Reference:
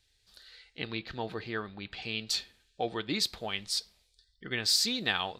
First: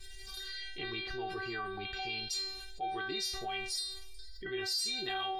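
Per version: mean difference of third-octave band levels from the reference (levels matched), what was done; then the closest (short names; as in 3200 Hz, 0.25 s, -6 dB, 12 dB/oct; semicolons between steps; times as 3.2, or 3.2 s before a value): 7.5 dB: low shelf 140 Hz +11 dB; metallic resonator 380 Hz, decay 0.44 s, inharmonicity 0.002; fast leveller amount 70%; gain +5 dB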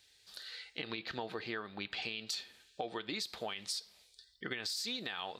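5.0 dB: HPF 330 Hz 6 dB/oct; limiter -24.5 dBFS, peak gain reduction 11 dB; compressor, threshold -43 dBFS, peak gain reduction 12 dB; gain +6.5 dB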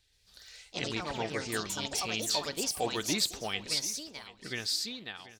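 9.5 dB: ending faded out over 1.28 s; echoes that change speed 0.124 s, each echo +4 st, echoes 3; feedback echo 0.735 s, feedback 26%, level -17 dB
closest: second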